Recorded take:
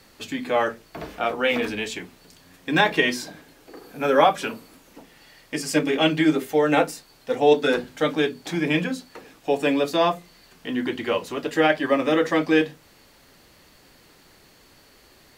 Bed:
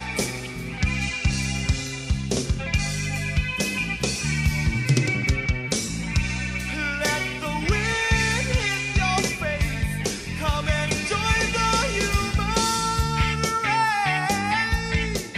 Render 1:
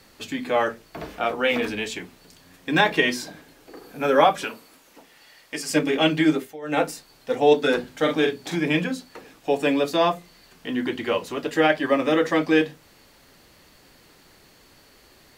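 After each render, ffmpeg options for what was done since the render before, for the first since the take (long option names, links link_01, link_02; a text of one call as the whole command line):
ffmpeg -i in.wav -filter_complex "[0:a]asettb=1/sr,asplit=3[link_01][link_02][link_03];[link_01]atrim=end=4.444[link_04];[link_02]atrim=start=4.44:end=5.7,asetpts=PTS-STARTPTS,afade=type=in:duration=0.004:curve=qsin,afade=type=out:start_time=1.256:duration=0.004:curve=qsin,lowshelf=frequency=300:gain=-12[link_05];[link_03]atrim=start=5.696[link_06];[link_04][link_05]acrossfade=duration=0.004:curve1=hsin:curve2=qsin[link_07];[link_07][link_06]acrossfade=duration=0.004:curve1=qsin:curve2=hsin,asettb=1/sr,asplit=3[link_08][link_09][link_10];[link_08]atrim=end=7.994[link_11];[link_09]atrim=start=7.99:end=8.56,asetpts=PTS-STARTPTS,afade=type=in:duration=0.004:curve=qsin,afade=type=out:start_time=0.566:duration=0.004:curve=qsin,asplit=2[link_12][link_13];[link_13]adelay=43,volume=-5.5dB[link_14];[link_12][link_14]amix=inputs=2:normalize=0,atrim=end_sample=25137[link_15];[link_10]atrim=start=8.556[link_16];[link_11][link_15]acrossfade=duration=0.004:curve1=hsin:curve2=qsin[link_17];[link_17][link_16]acrossfade=duration=0.004:curve1=qsin:curve2=hsin,asplit=3[link_18][link_19][link_20];[link_18]atrim=end=6.57,asetpts=PTS-STARTPTS,afade=type=out:start_time=6.32:duration=0.25:silence=0.105925[link_21];[link_19]atrim=start=6.57:end=6.61,asetpts=PTS-STARTPTS,volume=-19.5dB[link_22];[link_20]atrim=start=6.61,asetpts=PTS-STARTPTS,afade=type=in:duration=0.25:silence=0.105925[link_23];[link_21][link_22][link_23]concat=n=3:v=0:a=1" out.wav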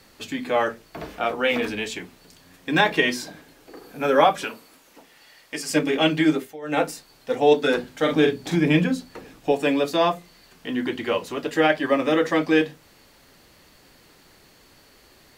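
ffmpeg -i in.wav -filter_complex "[0:a]asettb=1/sr,asplit=3[link_01][link_02][link_03];[link_01]atrim=end=8.124[link_04];[link_02]atrim=start=8.12:end=9.52,asetpts=PTS-STARTPTS,afade=type=in:duration=0.004:curve=qsin,afade=type=out:start_time=1.396:duration=0.004:curve=qsin,lowshelf=frequency=280:gain=9[link_05];[link_03]atrim=start=9.516[link_06];[link_04][link_05]acrossfade=duration=0.004:curve1=hsin:curve2=qsin[link_07];[link_07][link_06]acrossfade=duration=0.004:curve1=qsin:curve2=hsin" out.wav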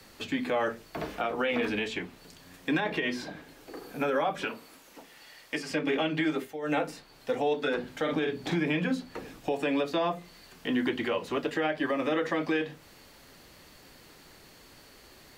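ffmpeg -i in.wav -filter_complex "[0:a]acrossover=split=130|560|4000[link_01][link_02][link_03][link_04];[link_01]acompressor=threshold=-48dB:ratio=4[link_05];[link_02]acompressor=threshold=-24dB:ratio=4[link_06];[link_03]acompressor=threshold=-23dB:ratio=4[link_07];[link_04]acompressor=threshold=-53dB:ratio=4[link_08];[link_05][link_06][link_07][link_08]amix=inputs=4:normalize=0,alimiter=limit=-19dB:level=0:latency=1:release=143" out.wav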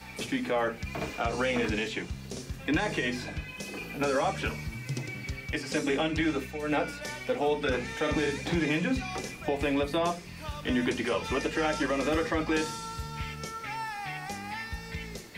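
ffmpeg -i in.wav -i bed.wav -filter_complex "[1:a]volume=-14.5dB[link_01];[0:a][link_01]amix=inputs=2:normalize=0" out.wav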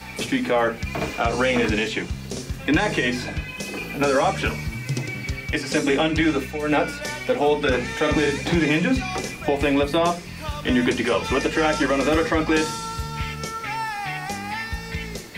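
ffmpeg -i in.wav -af "volume=8dB" out.wav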